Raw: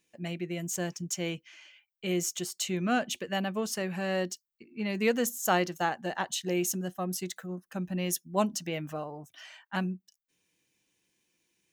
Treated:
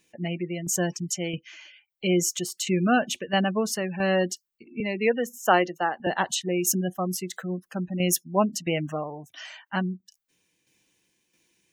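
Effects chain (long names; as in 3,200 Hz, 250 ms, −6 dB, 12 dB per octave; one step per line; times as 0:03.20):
gate on every frequency bin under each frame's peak −25 dB strong
0:04.80–0:06.07: three-way crossover with the lows and the highs turned down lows −12 dB, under 240 Hz, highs −13 dB, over 3,600 Hz
shaped tremolo saw down 1.5 Hz, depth 55%
level +8.5 dB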